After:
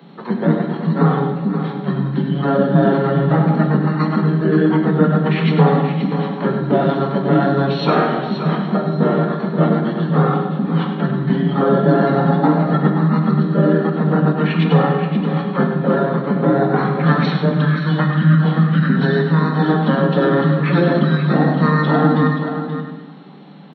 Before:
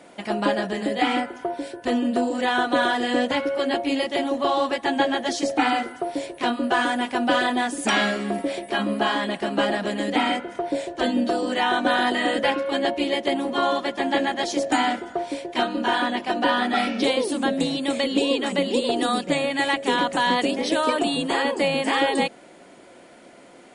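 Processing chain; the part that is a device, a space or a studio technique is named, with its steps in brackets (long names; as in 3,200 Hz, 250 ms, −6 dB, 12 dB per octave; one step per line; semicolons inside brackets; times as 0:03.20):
monster voice (pitch shifter −10 semitones; formants moved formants −5 semitones; low-shelf EQ 130 Hz +5.5 dB; single-tap delay 102 ms −9 dB; convolution reverb RT60 1.4 s, pre-delay 3 ms, DRR 4.5 dB)
Butterworth high-pass 150 Hz 96 dB per octave
single-tap delay 528 ms −9.5 dB
level +5.5 dB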